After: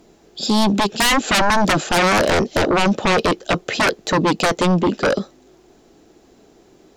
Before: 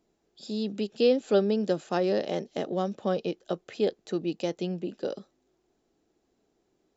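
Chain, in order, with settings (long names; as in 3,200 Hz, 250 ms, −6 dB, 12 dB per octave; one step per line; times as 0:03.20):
sine wavefolder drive 18 dB, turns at −12 dBFS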